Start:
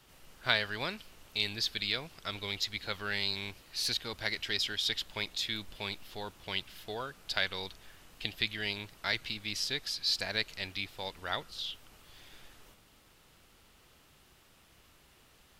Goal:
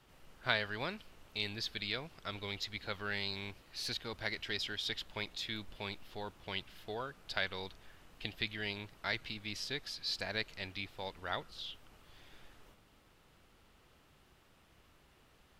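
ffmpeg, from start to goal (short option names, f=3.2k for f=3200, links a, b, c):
-af "highshelf=f=3.3k:g=-9,volume=-1.5dB"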